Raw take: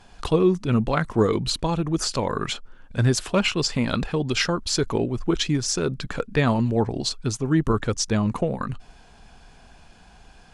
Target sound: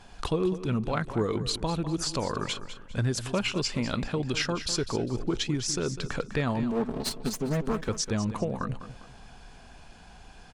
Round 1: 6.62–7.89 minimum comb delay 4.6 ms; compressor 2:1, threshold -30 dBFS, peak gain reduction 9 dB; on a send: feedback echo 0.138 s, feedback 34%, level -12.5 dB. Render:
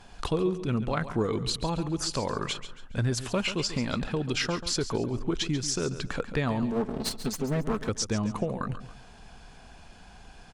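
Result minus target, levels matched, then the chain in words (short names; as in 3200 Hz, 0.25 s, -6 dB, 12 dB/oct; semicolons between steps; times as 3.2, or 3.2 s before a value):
echo 63 ms early
6.62–7.89 minimum comb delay 4.6 ms; compressor 2:1, threshold -30 dBFS, peak gain reduction 9 dB; on a send: feedback echo 0.201 s, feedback 34%, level -12.5 dB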